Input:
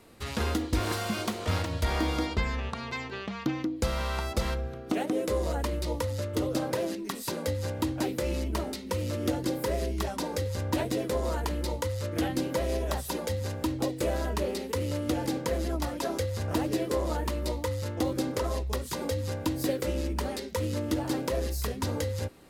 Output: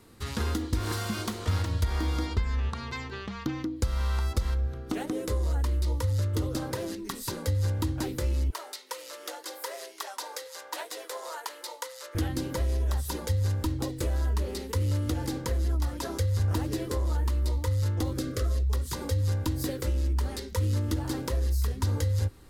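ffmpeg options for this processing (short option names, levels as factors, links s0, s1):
-filter_complex "[0:a]asettb=1/sr,asplit=3[s0][s1][s2];[s0]atrim=end=8.504[s3];[s1]atrim=start=8.5:end=12.15,asetpts=PTS-STARTPTS,afade=t=in:d=0.004:c=qsin,afade=t=out:st=3.646:d=0.004:c=qsin,highpass=f=570:w=0.5412,highpass=f=570:w=1.3066[s4];[s2]atrim=start=12.146[s5];[s3][s4]acrossfade=d=0.004:c1=hsin:c2=qsin[s6];[s6][s5]acrossfade=d=0.004:c1=qsin:c2=hsin,asettb=1/sr,asplit=3[s7][s8][s9];[s7]atrim=end=18.194[s10];[s8]atrim=start=18.19:end=18.67,asetpts=PTS-STARTPTS,afade=t=in:d=0.004:c=qsin,afade=t=out:st=0.476:d=0.004:c=qsin,asuperstop=centerf=900:order=12:qfactor=2.7[s11];[s9]atrim=start=18.666[s12];[s10][s11]acrossfade=d=0.004:c1=hsin:c2=qsin[s13];[s13][s12]acrossfade=d=0.004:c1=qsin:c2=hsin,asubboost=boost=5:cutoff=73,acompressor=threshold=0.0562:ratio=6,equalizer=f=100:t=o:w=0.67:g=4,equalizer=f=630:t=o:w=0.67:g=-8,equalizer=f=2500:t=o:w=0.67:g=-5,volume=1.12"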